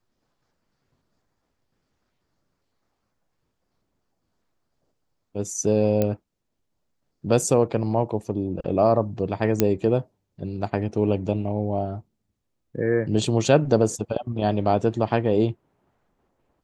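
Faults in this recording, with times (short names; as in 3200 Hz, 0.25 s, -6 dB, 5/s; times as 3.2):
6.02 pop -10 dBFS
9.6 pop -4 dBFS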